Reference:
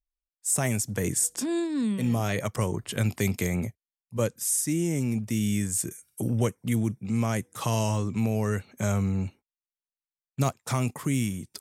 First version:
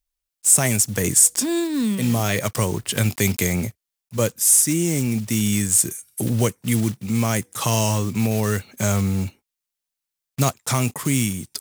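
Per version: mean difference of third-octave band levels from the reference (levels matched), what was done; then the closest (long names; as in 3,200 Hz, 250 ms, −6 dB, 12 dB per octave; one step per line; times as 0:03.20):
4.0 dB: one scale factor per block 5 bits
high-shelf EQ 2,600 Hz +7 dB
level +5 dB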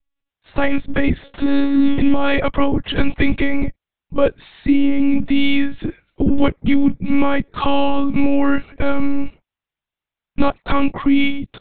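11.0 dB: in parallel at −2.5 dB: brickwall limiter −18 dBFS, peak gain reduction 7.5 dB
on the sum: one-pitch LPC vocoder at 8 kHz 280 Hz
level +9 dB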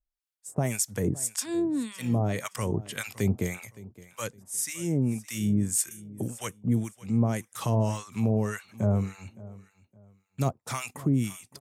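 6.5 dB: on a send: repeating echo 565 ms, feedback 27%, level −19.5 dB
on the sum: two-band tremolo in antiphase 1.8 Hz, depth 100%, crossover 920 Hz
level +3 dB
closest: first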